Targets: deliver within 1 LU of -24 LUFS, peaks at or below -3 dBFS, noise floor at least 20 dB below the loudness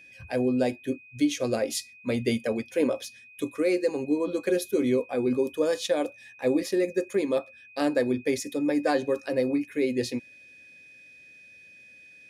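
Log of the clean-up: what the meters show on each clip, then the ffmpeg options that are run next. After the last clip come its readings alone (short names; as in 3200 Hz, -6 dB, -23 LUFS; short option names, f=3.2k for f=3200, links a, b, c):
steady tone 2500 Hz; tone level -49 dBFS; loudness -27.5 LUFS; peak -12.5 dBFS; loudness target -24.0 LUFS
-> -af "bandreject=f=2.5k:w=30"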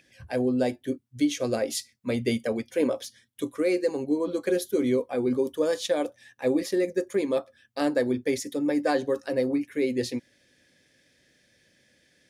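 steady tone none; loudness -27.5 LUFS; peak -12.5 dBFS; loudness target -24.0 LUFS
-> -af "volume=3.5dB"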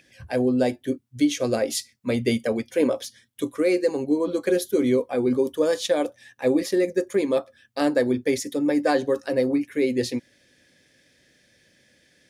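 loudness -24.0 LUFS; peak -9.0 dBFS; noise floor -62 dBFS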